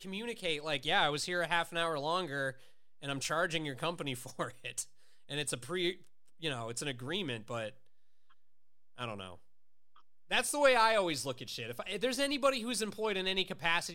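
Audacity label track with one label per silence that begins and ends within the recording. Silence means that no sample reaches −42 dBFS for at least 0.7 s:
7.690000	8.990000	silence
9.340000	10.310000	silence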